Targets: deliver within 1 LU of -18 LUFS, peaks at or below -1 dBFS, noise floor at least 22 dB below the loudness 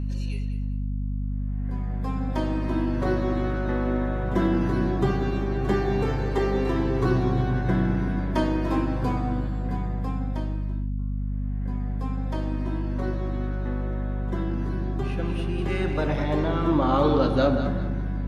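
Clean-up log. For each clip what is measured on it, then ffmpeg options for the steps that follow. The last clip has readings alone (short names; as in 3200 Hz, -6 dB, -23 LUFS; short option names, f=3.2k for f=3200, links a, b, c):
hum 50 Hz; harmonics up to 250 Hz; hum level -25 dBFS; loudness -26.5 LUFS; peak -8.0 dBFS; loudness target -18.0 LUFS
-> -af "bandreject=f=50:t=h:w=6,bandreject=f=100:t=h:w=6,bandreject=f=150:t=h:w=6,bandreject=f=200:t=h:w=6,bandreject=f=250:t=h:w=6"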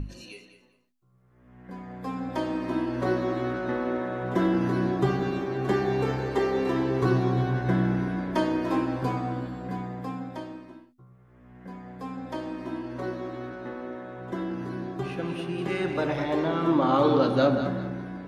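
hum none; loudness -28.0 LUFS; peak -8.0 dBFS; loudness target -18.0 LUFS
-> -af "volume=10dB,alimiter=limit=-1dB:level=0:latency=1"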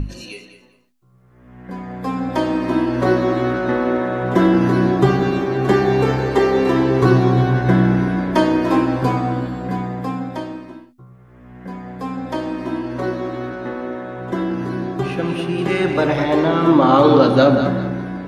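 loudness -18.0 LUFS; peak -1.0 dBFS; noise floor -48 dBFS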